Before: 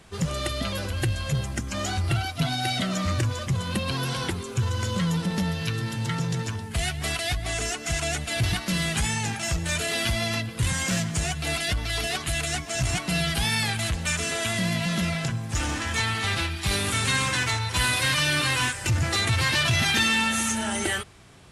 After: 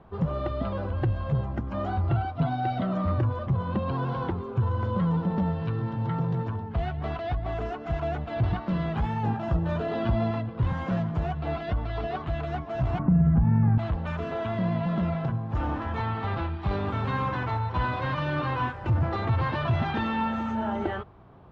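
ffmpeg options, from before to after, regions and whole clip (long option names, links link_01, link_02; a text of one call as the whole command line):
ffmpeg -i in.wav -filter_complex "[0:a]asettb=1/sr,asplit=3[link_01][link_02][link_03];[link_01]atrim=end=9.234[link_04];[link_02]atrim=start=9.23:end=10.31,asetpts=PTS-STARTPTS,afade=type=in:duration=0.004:curve=qsin,afade=type=out:start_time=1.076:duration=0.004:curve=qsin,equalizer=frequency=260:width_type=o:width=2.4:gain=4.5,bandreject=frequency=2200:width=8.2,asplit=2[link_05][link_06];[link_06]adelay=17,volume=-13dB[link_07];[link_05][link_07]amix=inputs=2:normalize=0,atrim=end_sample=47628[link_08];[link_03]atrim=start=10.306[link_09];[link_04][link_08]acrossfade=duration=0.004:curve1=hsin:curve2=qsin[link_10];[link_10][link_09]acrossfade=duration=0.004:curve1=qsin:curve2=hsin,asettb=1/sr,asplit=3[link_11][link_12][link_13];[link_11]atrim=end=12.994[link_14];[link_12]atrim=start=12.99:end=13.78,asetpts=PTS-STARTPTS,afade=type=in:duration=0.004:curve=qsin,afade=type=out:start_time=0.786:duration=0.004:curve=qsin,lowpass=frequency=1800:width=0.5412,lowpass=frequency=1800:width=1.3066,lowshelf=frequency=290:width_type=q:width=1.5:gain=13.5,acompressor=threshold=-17dB:ratio=6:attack=3.2:release=140:knee=1:detection=peak[link_15];[link_13]atrim=start=13.776[link_16];[link_14][link_15]acrossfade=duration=0.004:curve1=hsin:curve2=qsin[link_17];[link_17][link_16]acrossfade=duration=0.004:curve1=qsin:curve2=hsin,lowpass=frequency=3400:width=0.5412,lowpass=frequency=3400:width=1.3066,highshelf=frequency=1500:width_type=q:width=1.5:gain=-13" out.wav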